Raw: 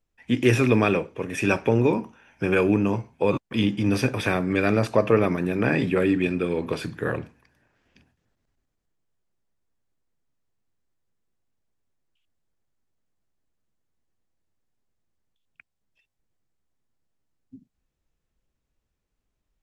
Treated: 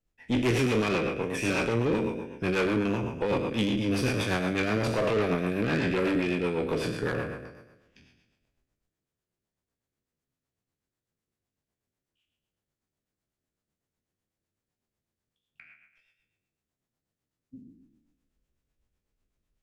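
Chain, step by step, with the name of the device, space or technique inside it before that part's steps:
peak hold with a decay on every bin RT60 1.09 s
overdriven rotary cabinet (tube saturation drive 20 dB, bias 0.5; rotating-speaker cabinet horn 8 Hz)

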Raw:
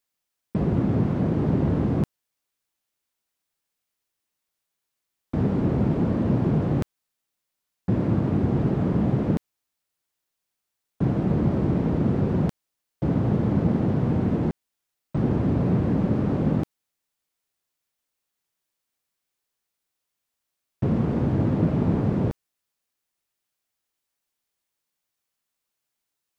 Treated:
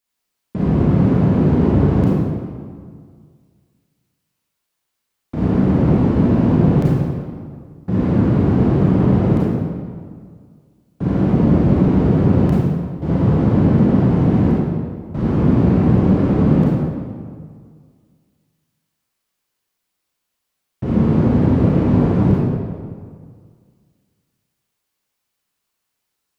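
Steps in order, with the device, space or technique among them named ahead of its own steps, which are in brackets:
stairwell (convolution reverb RT60 1.9 s, pre-delay 28 ms, DRR −7 dB)

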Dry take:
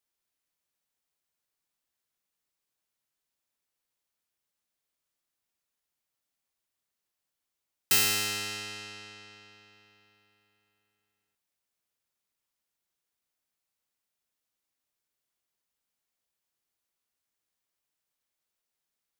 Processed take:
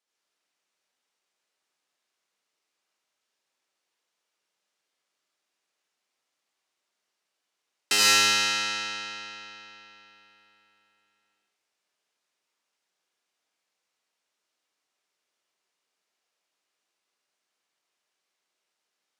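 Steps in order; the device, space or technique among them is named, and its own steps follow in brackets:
supermarket ceiling speaker (band-pass filter 270–7,000 Hz; convolution reverb RT60 1.0 s, pre-delay 67 ms, DRR −4 dB)
level +3.5 dB

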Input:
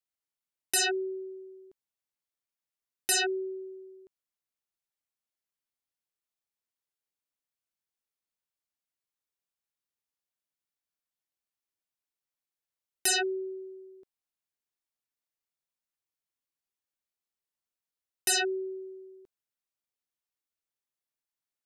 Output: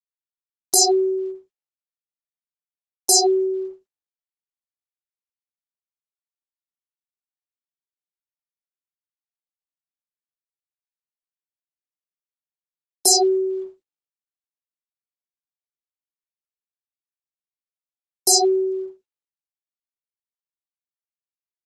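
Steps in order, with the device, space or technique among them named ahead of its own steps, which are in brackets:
brick-wall band-stop 950–4,100 Hz
noise gate −42 dBFS, range −30 dB
noise reduction from a noise print of the clip's start 7 dB
video call (high-pass filter 130 Hz 24 dB per octave; automatic gain control gain up to 15 dB; noise gate −44 dBFS, range −39 dB; Opus 12 kbit/s 48,000 Hz)

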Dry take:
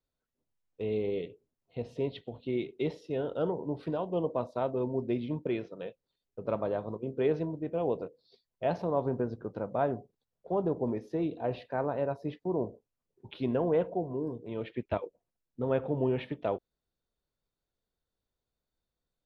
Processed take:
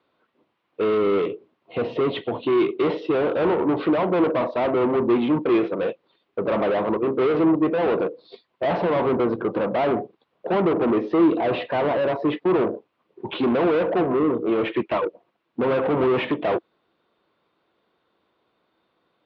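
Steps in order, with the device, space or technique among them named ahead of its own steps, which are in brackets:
overdrive pedal into a guitar cabinet (mid-hump overdrive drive 32 dB, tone 2,800 Hz, clips at −15.5 dBFS; loudspeaker in its box 80–3,500 Hz, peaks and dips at 200 Hz +4 dB, 330 Hz +8 dB, 1,100 Hz +5 dB, 1,700 Hz −3 dB)

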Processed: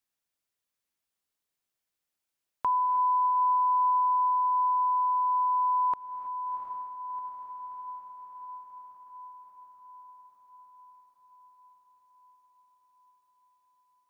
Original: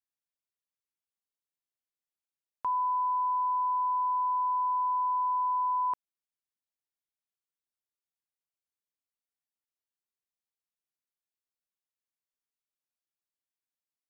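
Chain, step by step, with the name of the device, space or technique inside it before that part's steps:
feedback delay with all-pass diffusion 719 ms, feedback 65%, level −10 dB
parallel compression (in parallel at −1 dB: downward compressor, threshold −39 dBFS, peak gain reduction 11.5 dB)
on the sum: reverb whose tail is shaped and stops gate 350 ms rising, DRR 11.5 dB
level +1.5 dB

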